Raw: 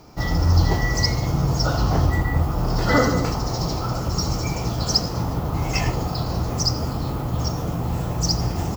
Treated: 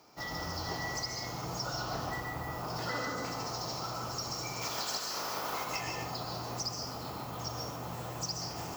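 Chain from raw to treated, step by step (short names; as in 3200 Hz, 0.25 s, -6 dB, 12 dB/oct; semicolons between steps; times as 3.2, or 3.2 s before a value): 4.61–5.63 spectral limiter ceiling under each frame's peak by 23 dB; HPF 700 Hz 6 dB/oct; compressor, threshold -26 dBFS, peak gain reduction 10 dB; on a send: reverb RT60 0.55 s, pre-delay 0.118 s, DRR 2.5 dB; on the sum: gain -8 dB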